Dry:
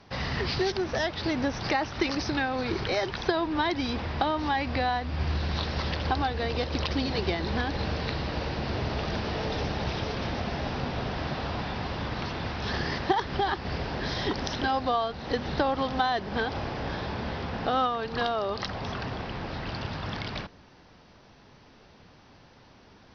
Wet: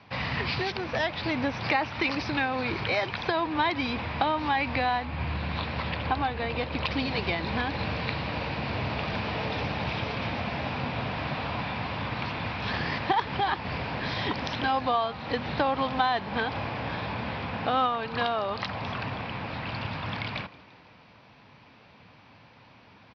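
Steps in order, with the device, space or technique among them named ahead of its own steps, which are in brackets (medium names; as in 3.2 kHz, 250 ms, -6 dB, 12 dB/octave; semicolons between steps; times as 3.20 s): 5.05–6.84 s: distance through air 130 m; frequency-shifting delay pedal into a guitar cabinet (frequency-shifting echo 164 ms, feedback 60%, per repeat +100 Hz, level -22 dB; cabinet simulation 90–4600 Hz, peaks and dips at 110 Hz +4 dB, 380 Hz -7 dB, 1 kHz +4 dB, 2.4 kHz +8 dB)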